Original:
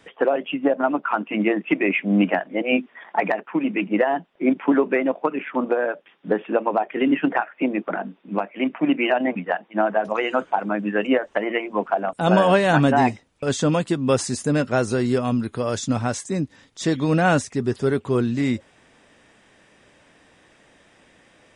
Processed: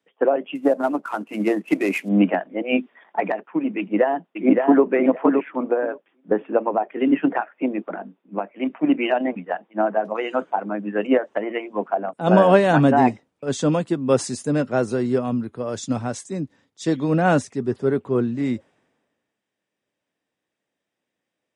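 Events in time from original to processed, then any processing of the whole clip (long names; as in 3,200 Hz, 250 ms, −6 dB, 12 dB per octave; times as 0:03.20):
0:00.55–0:02.09: variable-slope delta modulation 64 kbit/s
0:03.78–0:04.83: delay throw 570 ms, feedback 15%, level −2.5 dB
whole clip: Bessel high-pass filter 180 Hz, order 2; tilt shelving filter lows +4.5 dB, about 1,100 Hz; multiband upward and downward expander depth 70%; level −2 dB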